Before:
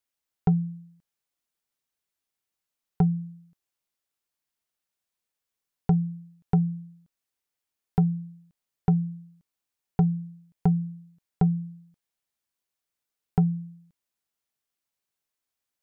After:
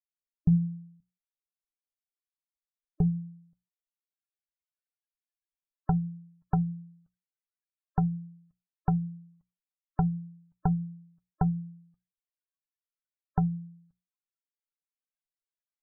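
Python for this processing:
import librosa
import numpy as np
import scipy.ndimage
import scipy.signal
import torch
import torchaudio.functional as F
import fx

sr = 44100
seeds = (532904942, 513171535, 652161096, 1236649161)

y = fx.peak_eq(x, sr, hz=320.0, db=-14.5, octaves=2.3)
y = fx.hum_notches(y, sr, base_hz=60, count=3)
y = fx.spec_topn(y, sr, count=64)
y = fx.filter_sweep_lowpass(y, sr, from_hz=220.0, to_hz=1200.0, start_s=2.35, end_s=4.4, q=1.8)
y = F.gain(torch.from_numpy(y), 4.5).numpy()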